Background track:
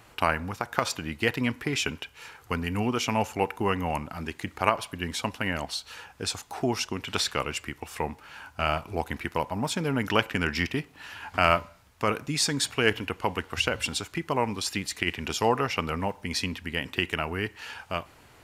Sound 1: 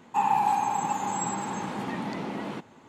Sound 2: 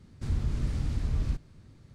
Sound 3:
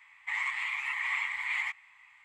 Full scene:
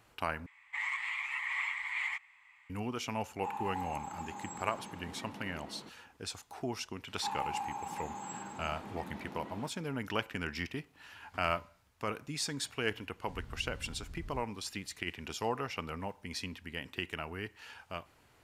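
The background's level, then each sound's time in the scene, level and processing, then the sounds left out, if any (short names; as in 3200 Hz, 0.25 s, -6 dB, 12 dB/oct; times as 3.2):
background track -10.5 dB
0.46 replace with 3 -3.5 dB
3.29 add 1 -15.5 dB
7.08 add 1 -13.5 dB
13.06 add 2 -17.5 dB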